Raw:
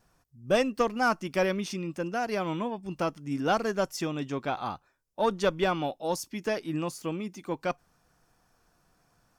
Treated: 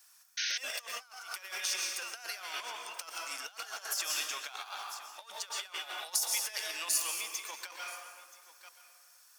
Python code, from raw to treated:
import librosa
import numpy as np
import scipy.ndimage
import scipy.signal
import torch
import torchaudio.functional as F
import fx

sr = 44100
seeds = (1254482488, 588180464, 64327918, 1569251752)

p1 = scipy.signal.sosfilt(scipy.signal.butter(2, 930.0, 'highpass', fs=sr, output='sos'), x)
p2 = fx.high_shelf(p1, sr, hz=7000.0, db=-3.0)
p3 = np.clip(10.0 ** (33.5 / 20.0) * p2, -1.0, 1.0) / 10.0 ** (33.5 / 20.0)
p4 = p2 + (p3 * librosa.db_to_amplitude(-3.0))
p5 = p4 + 10.0 ** (-20.0 / 20.0) * np.pad(p4, (int(978 * sr / 1000.0), 0))[:len(p4)]
p6 = fx.rev_plate(p5, sr, seeds[0], rt60_s=1.7, hf_ratio=0.55, predelay_ms=105, drr_db=4.5)
p7 = fx.over_compress(p6, sr, threshold_db=-35.0, ratio=-0.5)
p8 = np.diff(p7, prepend=0.0)
p9 = fx.spec_paint(p8, sr, seeds[1], shape='noise', start_s=0.37, length_s=0.21, low_hz=1400.0, high_hz=6500.0, level_db=-41.0)
y = p9 * librosa.db_to_amplitude(7.5)